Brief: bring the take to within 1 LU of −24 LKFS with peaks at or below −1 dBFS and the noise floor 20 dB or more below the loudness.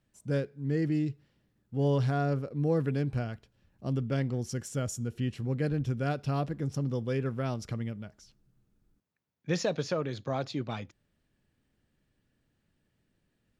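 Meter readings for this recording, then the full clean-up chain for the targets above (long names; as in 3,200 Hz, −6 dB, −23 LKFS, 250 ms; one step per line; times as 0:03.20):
integrated loudness −32.0 LKFS; sample peak −17.0 dBFS; target loudness −24.0 LKFS
→ level +8 dB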